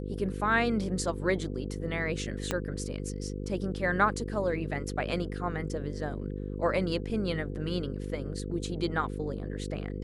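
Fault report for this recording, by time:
buzz 50 Hz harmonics 10 -36 dBFS
2.51 pop -13 dBFS

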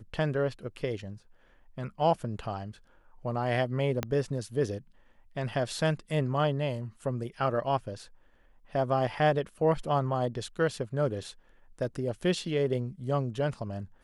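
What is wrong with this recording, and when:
4.03 pop -14 dBFS

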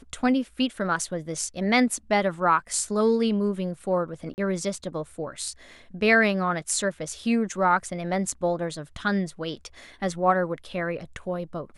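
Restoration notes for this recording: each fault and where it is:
4.34–4.38 gap 39 ms

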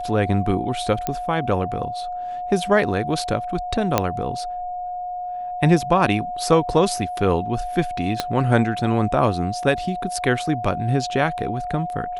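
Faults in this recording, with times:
tone 720 Hz -26 dBFS
1.07 pop -9 dBFS
3.98 pop -3 dBFS
8.2 pop -6 dBFS

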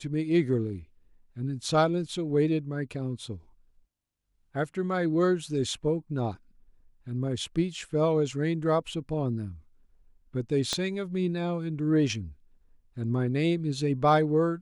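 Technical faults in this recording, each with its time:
10.73 pop -14 dBFS

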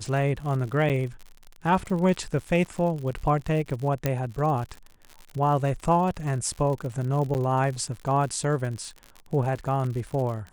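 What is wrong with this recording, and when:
crackle 83/s -33 dBFS
0.89–0.9 gap 7.8 ms
4.06 pop -10 dBFS
7.34–7.35 gap 9.4 ms

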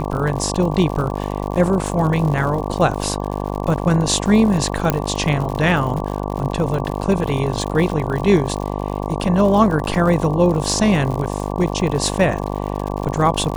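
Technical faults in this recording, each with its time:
buzz 50 Hz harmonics 23 -24 dBFS
crackle 94/s -25 dBFS
4.9 pop -3 dBFS

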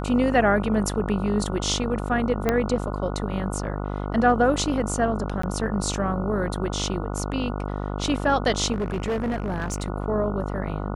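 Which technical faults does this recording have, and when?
buzz 50 Hz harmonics 29 -29 dBFS
2.49 pop -8 dBFS
5.42–5.43 gap 14 ms
8.72–9.88 clipped -22 dBFS

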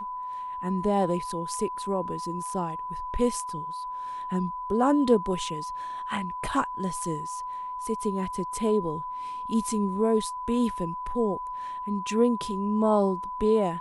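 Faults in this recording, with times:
tone 1000 Hz -32 dBFS

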